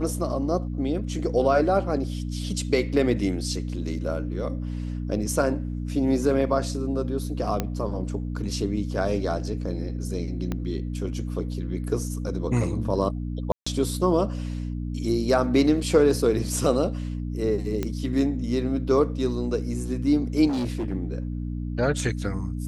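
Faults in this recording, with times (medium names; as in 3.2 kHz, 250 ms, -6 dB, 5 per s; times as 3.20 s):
hum 60 Hz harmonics 5 -30 dBFS
7.60 s: pop -11 dBFS
10.52 s: pop -16 dBFS
13.52–13.66 s: dropout 145 ms
17.83 s: pop -14 dBFS
20.48–20.93 s: clipped -23.5 dBFS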